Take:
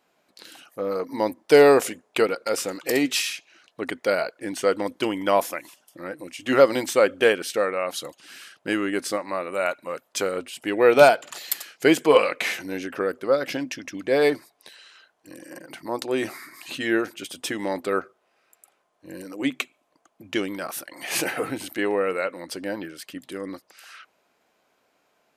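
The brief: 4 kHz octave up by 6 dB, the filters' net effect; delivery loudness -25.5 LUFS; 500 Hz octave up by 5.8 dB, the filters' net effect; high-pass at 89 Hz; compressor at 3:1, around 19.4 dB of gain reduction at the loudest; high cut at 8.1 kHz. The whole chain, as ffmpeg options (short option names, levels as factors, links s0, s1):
-af "highpass=89,lowpass=8100,equalizer=f=500:t=o:g=6.5,equalizer=f=4000:t=o:g=8,acompressor=threshold=0.0251:ratio=3,volume=2.37"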